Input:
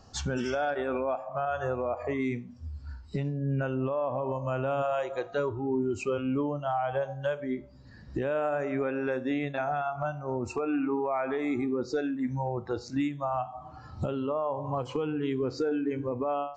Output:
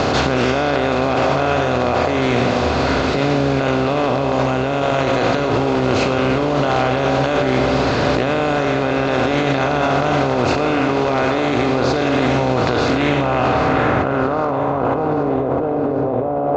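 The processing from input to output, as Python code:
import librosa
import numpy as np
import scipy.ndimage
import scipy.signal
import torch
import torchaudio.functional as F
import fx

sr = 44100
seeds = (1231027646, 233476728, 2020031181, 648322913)

y = fx.bin_compress(x, sr, power=0.2)
y = fx.filter_sweep_lowpass(y, sr, from_hz=4200.0, to_hz=700.0, start_s=12.67, end_s=15.41, q=1.6)
y = fx.echo_feedback(y, sr, ms=782, feedback_pct=52, wet_db=-10.0)
y = fx.over_compress(y, sr, threshold_db=-22.0, ratio=-1.0)
y = fx.doppler_dist(y, sr, depth_ms=0.12)
y = y * librosa.db_to_amplitude(5.0)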